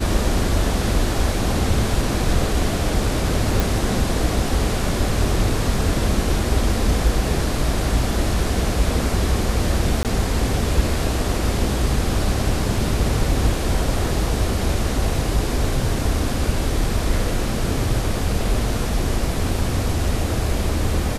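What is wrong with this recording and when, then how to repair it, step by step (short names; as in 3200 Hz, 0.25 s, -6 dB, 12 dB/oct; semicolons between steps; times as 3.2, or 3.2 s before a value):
3.6 pop
10.03–10.05 gap 18 ms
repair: de-click; interpolate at 10.03, 18 ms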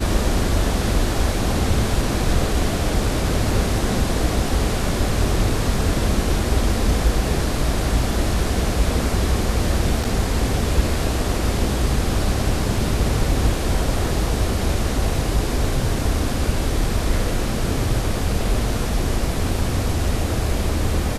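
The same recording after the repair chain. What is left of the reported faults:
none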